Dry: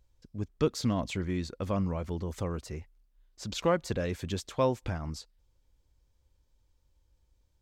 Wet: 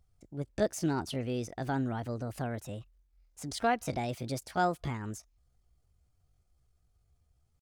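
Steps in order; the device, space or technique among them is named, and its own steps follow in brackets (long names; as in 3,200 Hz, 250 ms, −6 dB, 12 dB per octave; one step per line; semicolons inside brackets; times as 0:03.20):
chipmunk voice (pitch shifter +5.5 semitones)
level −2 dB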